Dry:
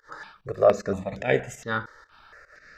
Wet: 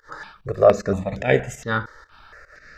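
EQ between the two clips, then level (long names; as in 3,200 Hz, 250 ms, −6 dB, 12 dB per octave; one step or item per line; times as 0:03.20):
low-shelf EQ 110 Hz +8 dB
+4.0 dB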